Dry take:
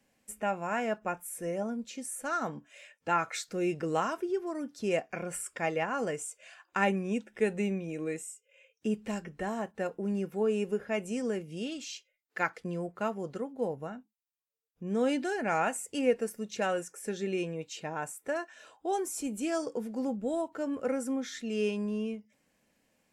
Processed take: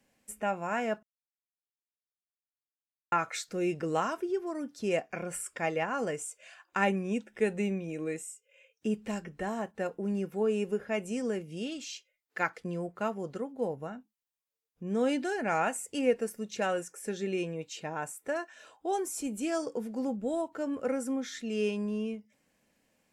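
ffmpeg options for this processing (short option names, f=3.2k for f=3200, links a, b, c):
-filter_complex "[0:a]asplit=3[a][b][c];[a]atrim=end=1.03,asetpts=PTS-STARTPTS,afade=t=out:st=1.026:d=0.004:c=hsin[d];[b]atrim=start=1.03:end=3.12,asetpts=PTS-STARTPTS,volume=0[e];[c]atrim=start=3.12,asetpts=PTS-STARTPTS,afade=t=in:d=0.004:c=hsin[f];[d][e][f]concat=n=3:v=0:a=1"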